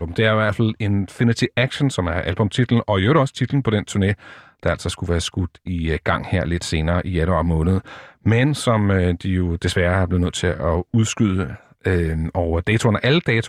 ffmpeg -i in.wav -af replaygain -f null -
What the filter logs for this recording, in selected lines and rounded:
track_gain = +1.5 dB
track_peak = 0.400